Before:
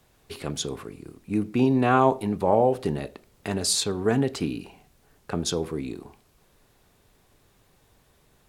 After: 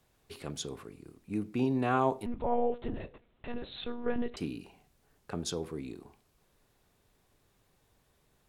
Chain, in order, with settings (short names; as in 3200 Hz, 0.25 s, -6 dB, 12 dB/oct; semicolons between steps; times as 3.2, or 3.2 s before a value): 2.26–4.37 monotone LPC vocoder at 8 kHz 240 Hz; gain -8.5 dB